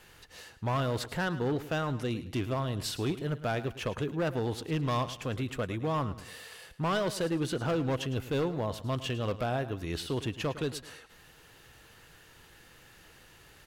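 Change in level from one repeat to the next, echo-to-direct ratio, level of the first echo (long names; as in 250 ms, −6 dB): −9.5 dB, −14.0 dB, −14.5 dB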